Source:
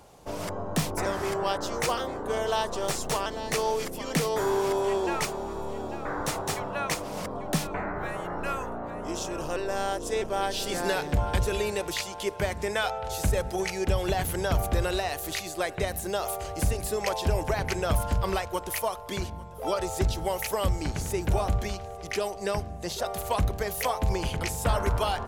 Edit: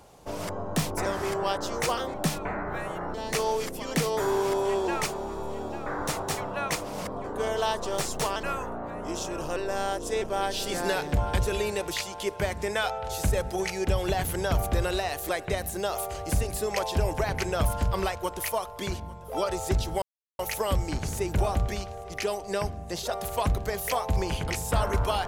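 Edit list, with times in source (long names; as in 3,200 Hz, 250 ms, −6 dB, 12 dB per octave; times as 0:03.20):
0:02.14–0:03.33: swap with 0:07.43–0:08.43
0:15.29–0:15.59: remove
0:20.32: splice in silence 0.37 s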